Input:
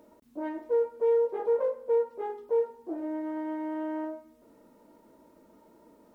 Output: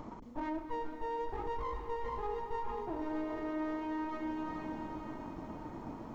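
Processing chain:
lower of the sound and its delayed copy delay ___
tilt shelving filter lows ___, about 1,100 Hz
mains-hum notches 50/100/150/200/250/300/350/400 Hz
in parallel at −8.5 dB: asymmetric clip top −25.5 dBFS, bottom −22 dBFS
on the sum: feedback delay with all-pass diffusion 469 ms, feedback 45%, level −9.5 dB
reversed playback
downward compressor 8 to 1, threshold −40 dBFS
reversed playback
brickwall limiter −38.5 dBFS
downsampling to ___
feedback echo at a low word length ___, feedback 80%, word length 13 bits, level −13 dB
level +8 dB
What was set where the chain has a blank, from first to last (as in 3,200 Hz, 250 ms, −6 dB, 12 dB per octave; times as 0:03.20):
0.93 ms, +6.5 dB, 16,000 Hz, 230 ms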